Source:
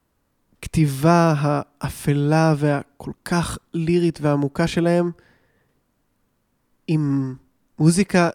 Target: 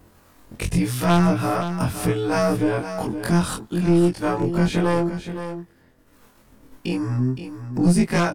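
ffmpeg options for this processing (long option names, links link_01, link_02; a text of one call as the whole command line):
ffmpeg -i in.wav -filter_complex "[0:a]afftfilt=real='re':imag='-im':win_size=2048:overlap=0.75,agate=range=-33dB:threshold=-55dB:ratio=3:detection=peak,asplit=2[link_01][link_02];[link_02]acompressor=threshold=-33dB:ratio=12,volume=-3dB[link_03];[link_01][link_03]amix=inputs=2:normalize=0,aeval=exprs='0.631*(cos(1*acos(clip(val(0)/0.631,-1,1)))-cos(1*PI/2))+0.0891*(cos(3*acos(clip(val(0)/0.631,-1,1)))-cos(3*PI/2))+0.158*(cos(5*acos(clip(val(0)/0.631,-1,1)))-cos(5*PI/2))+0.0355*(cos(6*acos(clip(val(0)/0.631,-1,1)))-cos(6*PI/2))':channel_layout=same,acompressor=mode=upward:threshold=-18dB:ratio=2.5,acrossover=split=590[link_04][link_05];[link_04]aeval=exprs='val(0)*(1-0.5/2+0.5/2*cos(2*PI*1.5*n/s))':channel_layout=same[link_06];[link_05]aeval=exprs='val(0)*(1-0.5/2-0.5/2*cos(2*PI*1.5*n/s))':channel_layout=same[link_07];[link_06][link_07]amix=inputs=2:normalize=0,asplit=2[link_08][link_09];[link_09]aecho=0:1:517:0.316[link_10];[link_08][link_10]amix=inputs=2:normalize=0" out.wav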